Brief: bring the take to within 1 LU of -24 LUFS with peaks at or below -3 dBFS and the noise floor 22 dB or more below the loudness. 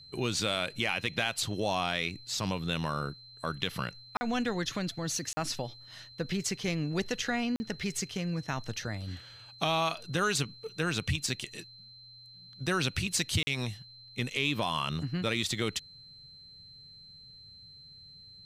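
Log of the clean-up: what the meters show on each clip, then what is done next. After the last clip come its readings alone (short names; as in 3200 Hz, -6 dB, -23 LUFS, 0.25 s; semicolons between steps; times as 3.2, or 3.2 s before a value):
dropouts 4; longest dropout 40 ms; steady tone 4100 Hz; tone level -50 dBFS; loudness -32.5 LUFS; peak -13.0 dBFS; loudness target -24.0 LUFS
-> interpolate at 4.17/5.33/7.56/13.43, 40 ms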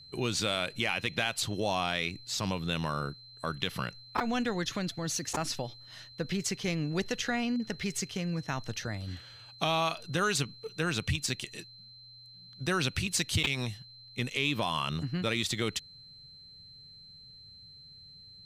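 dropouts 0; steady tone 4100 Hz; tone level -50 dBFS
-> notch 4100 Hz, Q 30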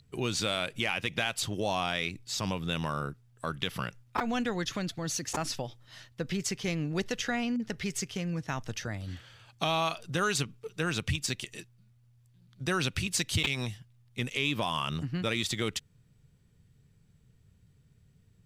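steady tone none; loudness -32.5 LUFS; peak -13.0 dBFS; loudness target -24.0 LUFS
-> gain +8.5 dB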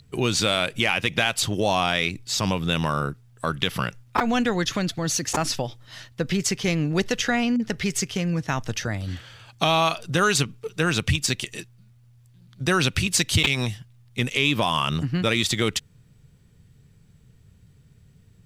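loudness -24.0 LUFS; peak -4.5 dBFS; noise floor -55 dBFS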